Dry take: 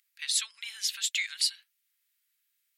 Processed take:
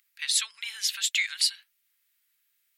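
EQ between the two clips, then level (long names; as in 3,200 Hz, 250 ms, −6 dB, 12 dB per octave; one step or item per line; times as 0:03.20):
parametric band 6,800 Hz −4 dB 2.8 octaves
+6.5 dB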